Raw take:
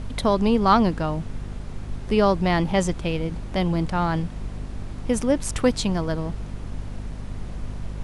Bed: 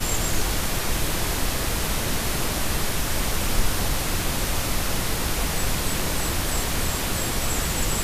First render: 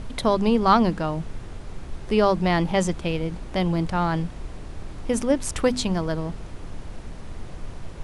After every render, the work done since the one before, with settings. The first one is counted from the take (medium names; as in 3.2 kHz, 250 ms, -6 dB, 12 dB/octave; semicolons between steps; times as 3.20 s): hum notches 50/100/150/200/250 Hz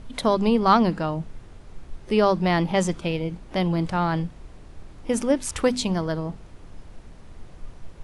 noise print and reduce 8 dB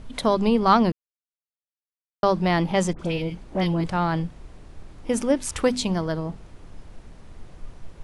0.92–2.23 s: mute; 2.93–3.84 s: phase dispersion highs, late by 61 ms, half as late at 1.5 kHz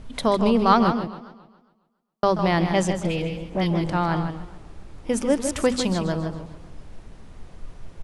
echo from a far wall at 27 m, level -8 dB; modulated delay 137 ms, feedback 49%, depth 171 cents, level -14.5 dB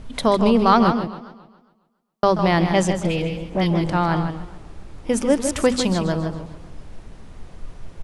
trim +3 dB; peak limiter -3 dBFS, peak gain reduction 2.5 dB